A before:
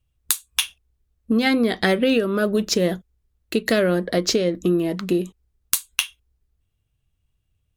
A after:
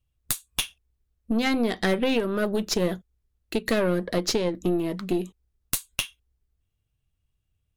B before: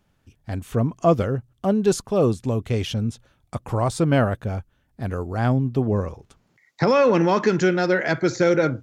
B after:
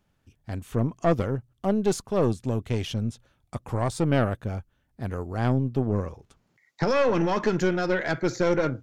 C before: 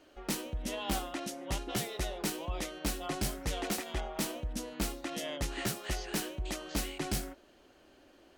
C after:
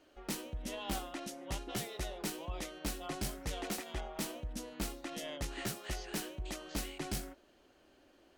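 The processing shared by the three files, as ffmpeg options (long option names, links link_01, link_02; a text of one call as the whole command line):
ffmpeg -i in.wav -af "aeval=exprs='(tanh(3.98*val(0)+0.6)-tanh(0.6))/3.98':channel_layout=same,volume=-1.5dB" out.wav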